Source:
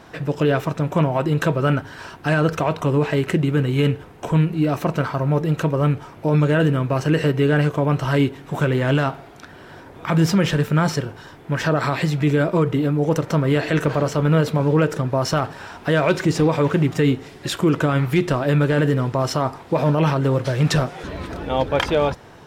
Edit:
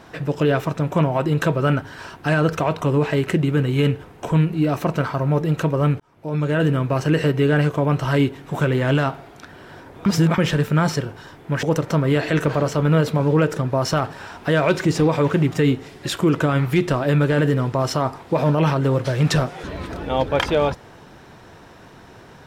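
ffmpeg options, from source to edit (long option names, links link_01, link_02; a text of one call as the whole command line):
ffmpeg -i in.wav -filter_complex "[0:a]asplit=5[link_01][link_02][link_03][link_04][link_05];[link_01]atrim=end=6,asetpts=PTS-STARTPTS,afade=type=out:start_time=5.996:duration=0.004:curve=hsin[link_06];[link_02]atrim=start=6:end=10.062,asetpts=PTS-STARTPTS,afade=type=in:duration=0.72[link_07];[link_03]atrim=start=10.058:end=10.382,asetpts=PTS-STARTPTS,areverse[link_08];[link_04]atrim=start=10.378:end=11.632[link_09];[link_05]atrim=start=13.028[link_10];[link_06][link_07]concat=n=2:v=0:a=1[link_11];[link_11][link_08]acrossfade=duration=0.004:curve1=hsin:curve2=hsin[link_12];[link_12][link_09]acrossfade=duration=0.004:curve1=hsin:curve2=hsin[link_13];[link_13][link_10]acrossfade=duration=0.004:curve1=hsin:curve2=hsin" out.wav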